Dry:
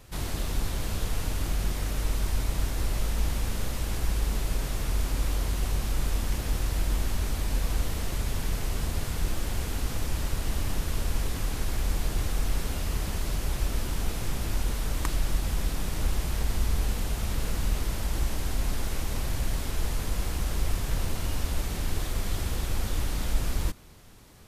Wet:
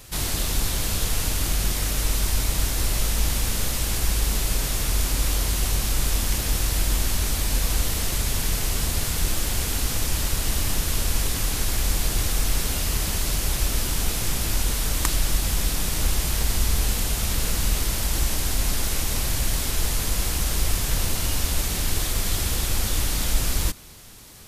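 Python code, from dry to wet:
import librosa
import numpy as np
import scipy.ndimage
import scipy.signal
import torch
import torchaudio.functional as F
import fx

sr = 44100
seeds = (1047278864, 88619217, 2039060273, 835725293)

y = fx.high_shelf(x, sr, hz=2600.0, db=10.5)
y = F.gain(torch.from_numpy(y), 3.5).numpy()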